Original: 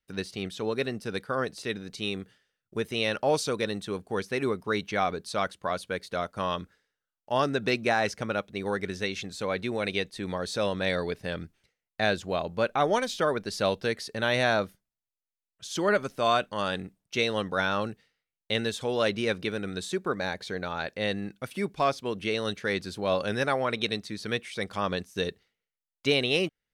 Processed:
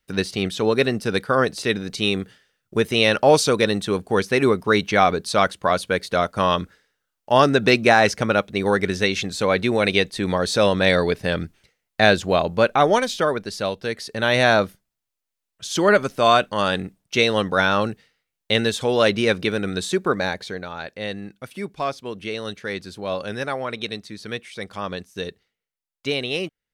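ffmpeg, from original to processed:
-af "volume=19dB,afade=t=out:st=12.35:d=1.41:silence=0.298538,afade=t=in:st=13.76:d=0.75:silence=0.375837,afade=t=out:st=20.15:d=0.51:silence=0.375837"

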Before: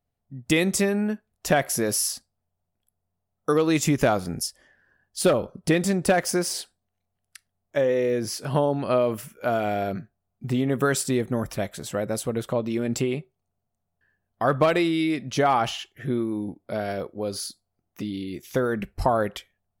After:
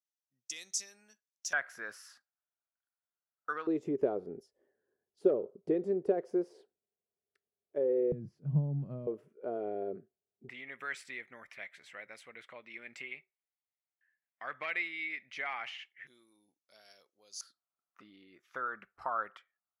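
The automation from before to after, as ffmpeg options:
-af "asetnsamples=n=441:p=0,asendcmd='1.53 bandpass f 1500;3.67 bandpass f 410;8.12 bandpass f 150;9.07 bandpass f 410;10.49 bandpass f 2100;16.07 bandpass f 6300;17.41 bandpass f 1300',bandpass=f=6k:t=q:w=5.7:csg=0"

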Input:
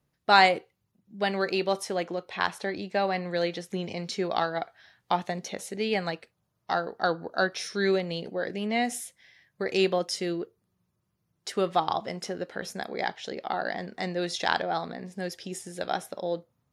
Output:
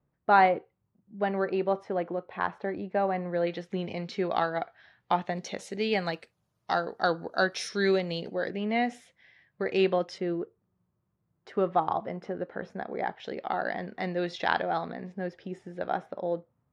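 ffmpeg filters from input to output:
-af "asetnsamples=n=441:p=0,asendcmd='3.47 lowpass f 3000;5.36 lowpass f 5900;6.14 lowpass f 11000;7.69 lowpass f 6300;8.5 lowpass f 2700;10.18 lowpass f 1500;13.2 lowpass f 2800;15.12 lowpass f 1700',lowpass=1.4k"

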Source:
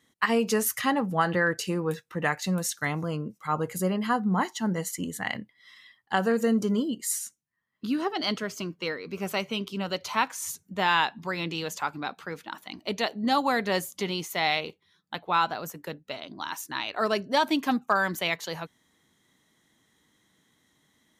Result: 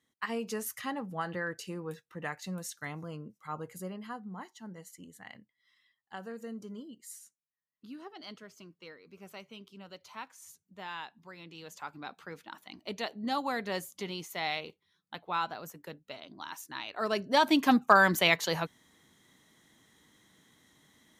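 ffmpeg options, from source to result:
-af "volume=10.5dB,afade=t=out:st=3.48:d=0.84:silence=0.446684,afade=t=in:st=11.48:d=0.76:silence=0.316228,afade=t=in:st=16.95:d=0.94:silence=0.266073"

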